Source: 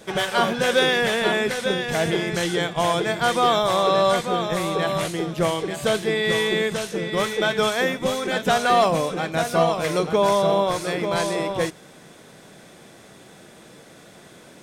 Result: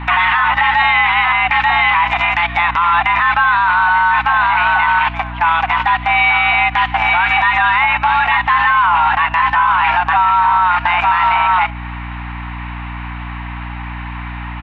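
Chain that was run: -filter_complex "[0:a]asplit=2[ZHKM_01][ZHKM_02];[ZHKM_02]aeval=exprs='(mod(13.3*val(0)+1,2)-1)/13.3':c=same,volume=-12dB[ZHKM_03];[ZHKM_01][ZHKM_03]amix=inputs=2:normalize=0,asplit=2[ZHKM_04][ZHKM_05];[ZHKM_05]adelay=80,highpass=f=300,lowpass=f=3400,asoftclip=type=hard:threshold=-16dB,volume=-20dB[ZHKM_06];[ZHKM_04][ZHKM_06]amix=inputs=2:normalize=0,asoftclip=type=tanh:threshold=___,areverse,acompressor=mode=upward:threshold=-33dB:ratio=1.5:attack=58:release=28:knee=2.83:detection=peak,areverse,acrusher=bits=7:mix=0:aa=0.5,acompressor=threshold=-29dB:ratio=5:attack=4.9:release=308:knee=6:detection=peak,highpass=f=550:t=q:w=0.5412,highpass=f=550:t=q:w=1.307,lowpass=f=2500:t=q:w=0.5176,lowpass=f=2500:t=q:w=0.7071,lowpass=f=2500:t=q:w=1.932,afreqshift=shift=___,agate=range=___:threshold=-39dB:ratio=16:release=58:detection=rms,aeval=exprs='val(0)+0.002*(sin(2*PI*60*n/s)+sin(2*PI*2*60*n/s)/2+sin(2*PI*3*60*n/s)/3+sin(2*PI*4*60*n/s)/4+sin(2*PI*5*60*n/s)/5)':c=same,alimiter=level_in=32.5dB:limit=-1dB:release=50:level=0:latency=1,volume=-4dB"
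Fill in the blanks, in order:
-10.5dB, 340, -15dB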